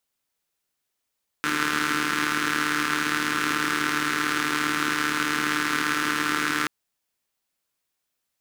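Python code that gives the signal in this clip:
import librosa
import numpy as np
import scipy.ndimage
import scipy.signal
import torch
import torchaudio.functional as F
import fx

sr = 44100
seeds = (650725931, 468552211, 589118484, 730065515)

y = fx.engine_four(sr, seeds[0], length_s=5.23, rpm=4500, resonances_hz=(300.0, 1400.0))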